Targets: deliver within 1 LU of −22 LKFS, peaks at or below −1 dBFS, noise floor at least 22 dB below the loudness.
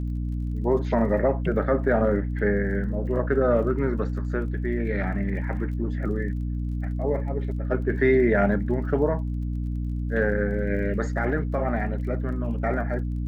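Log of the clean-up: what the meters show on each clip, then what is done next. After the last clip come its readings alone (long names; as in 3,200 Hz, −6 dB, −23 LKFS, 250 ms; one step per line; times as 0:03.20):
crackle rate 27 per second; mains hum 60 Hz; hum harmonics up to 300 Hz; level of the hum −25 dBFS; integrated loudness −25.5 LKFS; sample peak −9.0 dBFS; target loudness −22.0 LKFS
→ click removal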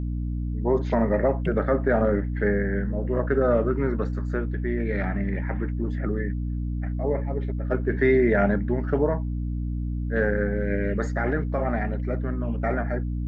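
crackle rate 0 per second; mains hum 60 Hz; hum harmonics up to 300 Hz; level of the hum −25 dBFS
→ mains-hum notches 60/120/180/240/300 Hz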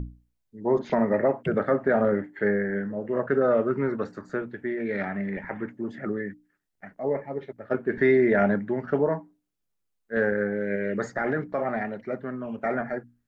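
mains hum none found; integrated loudness −27.0 LKFS; sample peak −11.0 dBFS; target loudness −22.0 LKFS
→ level +5 dB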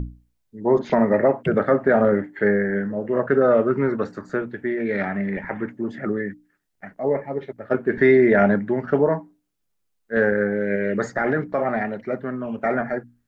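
integrated loudness −22.0 LKFS; sample peak −6.0 dBFS; background noise floor −72 dBFS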